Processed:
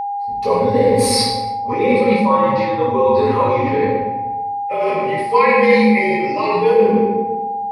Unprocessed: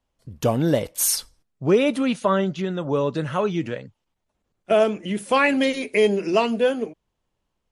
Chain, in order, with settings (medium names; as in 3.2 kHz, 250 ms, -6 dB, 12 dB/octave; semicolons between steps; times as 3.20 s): three-band isolator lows -22 dB, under 240 Hz, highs -16 dB, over 5.6 kHz; simulated room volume 590 m³, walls mixed, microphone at 6.7 m; reverse; compression 6:1, threshold -15 dBFS, peak gain reduction 15.5 dB; reverse; frequency shift -51 Hz; rippled EQ curve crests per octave 0.92, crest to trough 16 dB; whistle 810 Hz -19 dBFS; trim -1 dB